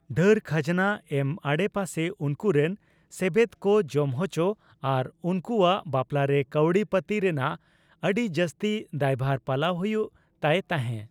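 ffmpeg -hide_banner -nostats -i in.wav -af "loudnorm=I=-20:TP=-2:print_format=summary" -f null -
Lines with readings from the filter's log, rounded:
Input Integrated:    -26.5 LUFS
Input True Peak:      -8.9 dBTP
Input LRA:             1.7 LU
Input Threshold:     -36.6 LUFS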